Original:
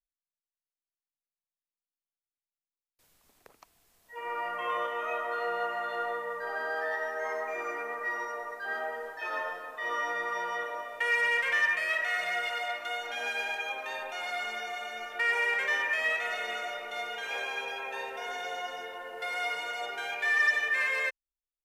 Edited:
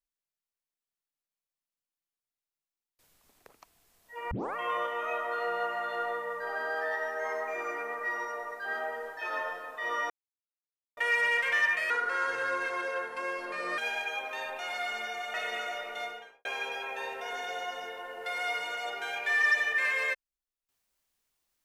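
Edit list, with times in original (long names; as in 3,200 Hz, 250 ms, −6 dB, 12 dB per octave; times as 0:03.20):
0:04.31: tape start 0.25 s
0:10.10–0:10.97: silence
0:11.90–0:13.31: play speed 75%
0:14.87–0:16.30: remove
0:16.92–0:17.41: fade out and dull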